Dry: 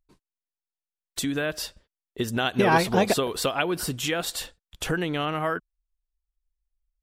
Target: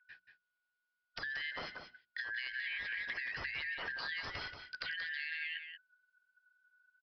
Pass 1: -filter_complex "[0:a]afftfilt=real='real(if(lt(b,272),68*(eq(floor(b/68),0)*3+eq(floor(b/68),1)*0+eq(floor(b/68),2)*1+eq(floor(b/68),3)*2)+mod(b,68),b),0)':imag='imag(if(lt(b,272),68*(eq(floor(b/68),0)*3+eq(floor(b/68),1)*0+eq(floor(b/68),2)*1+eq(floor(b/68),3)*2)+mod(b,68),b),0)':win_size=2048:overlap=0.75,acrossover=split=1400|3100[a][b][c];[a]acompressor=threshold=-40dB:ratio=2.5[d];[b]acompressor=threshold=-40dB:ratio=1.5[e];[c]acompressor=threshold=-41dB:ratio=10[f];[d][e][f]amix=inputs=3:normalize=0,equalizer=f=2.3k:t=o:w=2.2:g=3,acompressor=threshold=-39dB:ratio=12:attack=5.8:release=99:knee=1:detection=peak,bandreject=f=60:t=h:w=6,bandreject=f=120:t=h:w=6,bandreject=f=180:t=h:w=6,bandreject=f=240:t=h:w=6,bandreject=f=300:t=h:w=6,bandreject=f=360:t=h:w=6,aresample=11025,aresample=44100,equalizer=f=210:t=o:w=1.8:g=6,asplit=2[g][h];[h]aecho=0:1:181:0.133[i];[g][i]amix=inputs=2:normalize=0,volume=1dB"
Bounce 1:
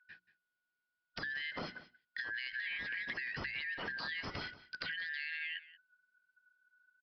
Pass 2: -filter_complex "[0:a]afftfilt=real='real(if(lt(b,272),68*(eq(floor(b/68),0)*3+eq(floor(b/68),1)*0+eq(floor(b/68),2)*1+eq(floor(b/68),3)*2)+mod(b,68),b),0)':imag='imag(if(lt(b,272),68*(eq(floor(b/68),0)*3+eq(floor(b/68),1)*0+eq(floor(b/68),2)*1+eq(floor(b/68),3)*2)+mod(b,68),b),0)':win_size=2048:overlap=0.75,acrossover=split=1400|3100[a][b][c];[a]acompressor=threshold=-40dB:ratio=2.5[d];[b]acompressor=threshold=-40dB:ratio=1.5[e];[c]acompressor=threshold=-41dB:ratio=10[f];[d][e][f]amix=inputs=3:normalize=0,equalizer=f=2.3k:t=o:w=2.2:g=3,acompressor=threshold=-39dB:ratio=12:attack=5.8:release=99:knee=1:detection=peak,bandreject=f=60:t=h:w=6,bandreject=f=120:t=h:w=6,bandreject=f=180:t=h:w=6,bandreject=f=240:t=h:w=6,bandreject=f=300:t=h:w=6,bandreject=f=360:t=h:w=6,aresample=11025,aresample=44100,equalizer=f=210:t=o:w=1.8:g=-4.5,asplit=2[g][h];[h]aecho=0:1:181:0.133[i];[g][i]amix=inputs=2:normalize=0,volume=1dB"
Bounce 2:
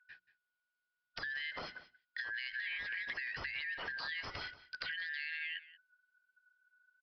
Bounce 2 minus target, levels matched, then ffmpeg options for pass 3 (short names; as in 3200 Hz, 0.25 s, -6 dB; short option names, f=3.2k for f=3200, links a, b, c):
echo-to-direct -9.5 dB
-filter_complex "[0:a]afftfilt=real='real(if(lt(b,272),68*(eq(floor(b/68),0)*3+eq(floor(b/68),1)*0+eq(floor(b/68),2)*1+eq(floor(b/68),3)*2)+mod(b,68),b),0)':imag='imag(if(lt(b,272),68*(eq(floor(b/68),0)*3+eq(floor(b/68),1)*0+eq(floor(b/68),2)*1+eq(floor(b/68),3)*2)+mod(b,68),b),0)':win_size=2048:overlap=0.75,acrossover=split=1400|3100[a][b][c];[a]acompressor=threshold=-40dB:ratio=2.5[d];[b]acompressor=threshold=-40dB:ratio=1.5[e];[c]acompressor=threshold=-41dB:ratio=10[f];[d][e][f]amix=inputs=3:normalize=0,equalizer=f=2.3k:t=o:w=2.2:g=3,acompressor=threshold=-39dB:ratio=12:attack=5.8:release=99:knee=1:detection=peak,bandreject=f=60:t=h:w=6,bandreject=f=120:t=h:w=6,bandreject=f=180:t=h:w=6,bandreject=f=240:t=h:w=6,bandreject=f=300:t=h:w=6,bandreject=f=360:t=h:w=6,aresample=11025,aresample=44100,equalizer=f=210:t=o:w=1.8:g=-4.5,asplit=2[g][h];[h]aecho=0:1:181:0.398[i];[g][i]amix=inputs=2:normalize=0,volume=1dB"